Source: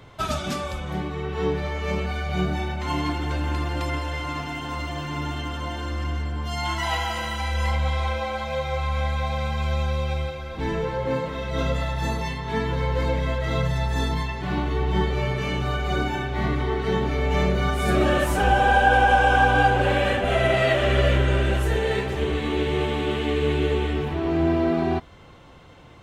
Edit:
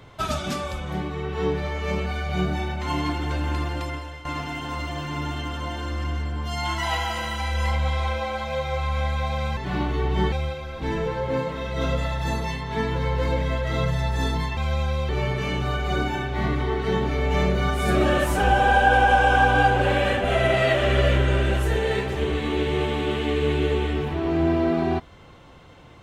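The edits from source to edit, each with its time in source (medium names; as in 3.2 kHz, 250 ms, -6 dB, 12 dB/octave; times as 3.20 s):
3.62–4.25 s: fade out, to -13.5 dB
9.57–10.09 s: swap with 14.34–15.09 s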